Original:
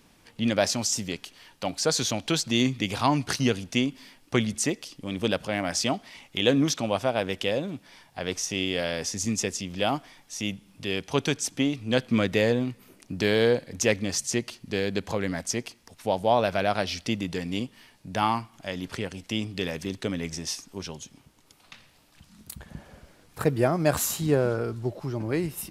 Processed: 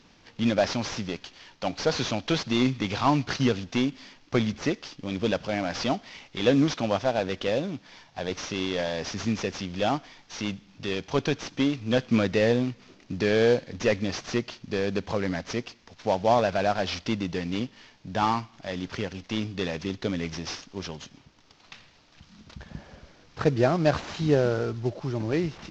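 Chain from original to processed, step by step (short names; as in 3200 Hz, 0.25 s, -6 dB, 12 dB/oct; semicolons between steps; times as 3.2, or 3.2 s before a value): CVSD 32 kbps; gain +1.5 dB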